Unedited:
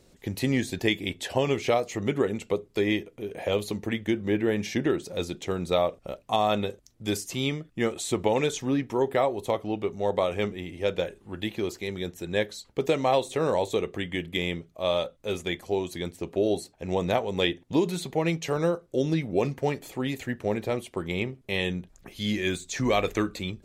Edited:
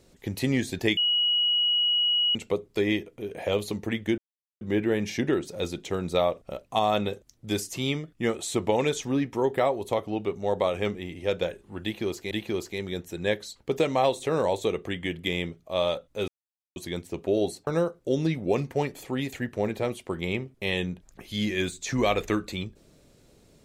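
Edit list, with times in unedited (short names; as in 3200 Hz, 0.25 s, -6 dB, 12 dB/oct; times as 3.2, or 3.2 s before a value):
0.97–2.35 bleep 2910 Hz -20.5 dBFS
4.18 insert silence 0.43 s
11.4–11.88 loop, 2 plays
15.37–15.85 mute
16.76–18.54 cut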